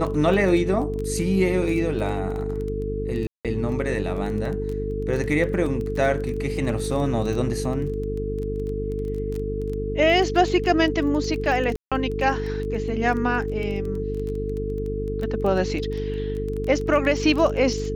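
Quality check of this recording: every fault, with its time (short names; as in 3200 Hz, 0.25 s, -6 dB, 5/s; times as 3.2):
buzz 50 Hz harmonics 9 -29 dBFS
crackle 13/s -28 dBFS
tone 440 Hz -28 dBFS
3.27–3.45 gap 0.177 s
11.76–11.92 gap 0.156 s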